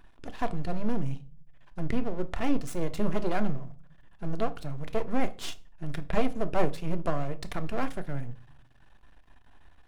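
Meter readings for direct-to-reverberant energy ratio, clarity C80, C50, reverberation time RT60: 9.0 dB, 25.0 dB, 19.0 dB, 0.40 s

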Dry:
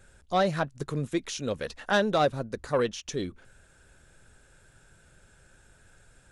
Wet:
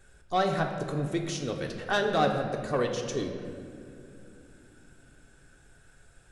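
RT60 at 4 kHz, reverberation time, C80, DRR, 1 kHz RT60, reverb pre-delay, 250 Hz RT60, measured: 1.5 s, 2.7 s, 7.0 dB, 2.0 dB, 2.2 s, 3 ms, 4.5 s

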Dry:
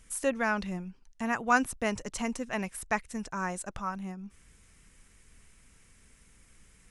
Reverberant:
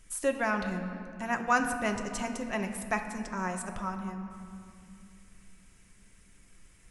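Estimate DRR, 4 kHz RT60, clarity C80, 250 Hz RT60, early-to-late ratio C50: 4.0 dB, 1.6 s, 8.5 dB, 4.0 s, 7.5 dB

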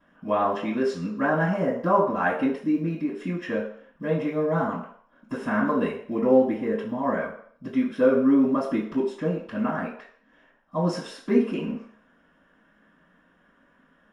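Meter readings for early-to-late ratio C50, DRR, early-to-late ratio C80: 5.5 dB, -16.5 dB, 9.0 dB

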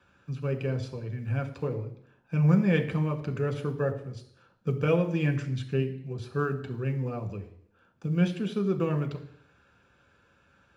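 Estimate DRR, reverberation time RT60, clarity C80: 4.5 dB, 0.70 s, 14.0 dB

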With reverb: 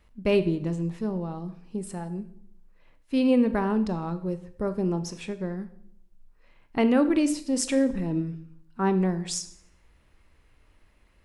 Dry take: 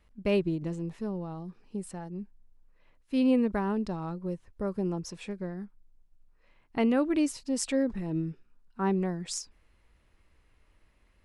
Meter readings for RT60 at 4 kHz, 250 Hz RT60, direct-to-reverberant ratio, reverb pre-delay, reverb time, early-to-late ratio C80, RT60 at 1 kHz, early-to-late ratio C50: 0.60 s, 0.85 s, 11.0 dB, 17 ms, 0.65 s, 17.5 dB, 0.60 s, 14.0 dB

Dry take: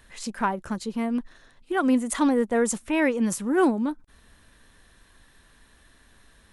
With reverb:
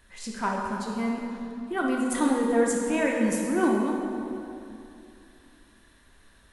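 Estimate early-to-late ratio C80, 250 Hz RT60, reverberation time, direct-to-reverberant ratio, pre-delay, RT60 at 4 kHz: 2.0 dB, 3.0 s, 2.7 s, -2.0 dB, 3 ms, 1.9 s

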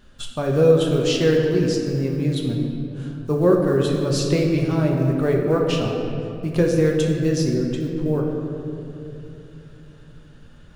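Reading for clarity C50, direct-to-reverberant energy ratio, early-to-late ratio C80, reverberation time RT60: 2.5 dB, -1.0 dB, 3.5 dB, 2.9 s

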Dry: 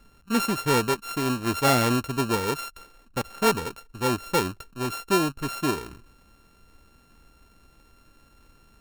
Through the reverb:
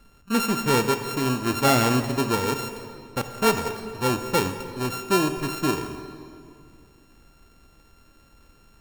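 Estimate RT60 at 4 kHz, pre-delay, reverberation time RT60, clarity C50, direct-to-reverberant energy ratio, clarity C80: 1.7 s, 12 ms, 2.4 s, 8.5 dB, 7.5 dB, 9.5 dB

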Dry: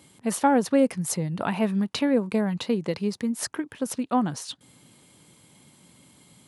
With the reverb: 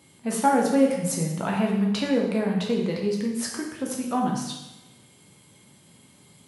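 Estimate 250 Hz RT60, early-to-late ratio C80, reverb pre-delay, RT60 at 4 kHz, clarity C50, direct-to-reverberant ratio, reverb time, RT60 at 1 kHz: 0.95 s, 6.0 dB, 4 ms, 0.95 s, 3.0 dB, -1.5 dB, 1.0 s, 1.0 s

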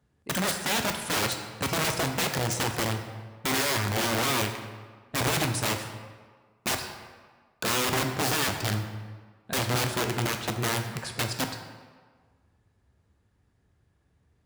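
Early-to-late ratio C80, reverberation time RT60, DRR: 8.5 dB, 1.6 s, 5.0 dB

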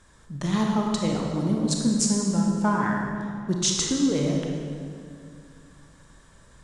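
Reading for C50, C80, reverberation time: 1.0 dB, 3.0 dB, 2.3 s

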